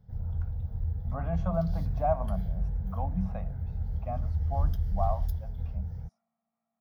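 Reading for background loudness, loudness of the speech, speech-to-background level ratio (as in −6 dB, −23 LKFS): −34.0 LKFS, −35.5 LKFS, −1.5 dB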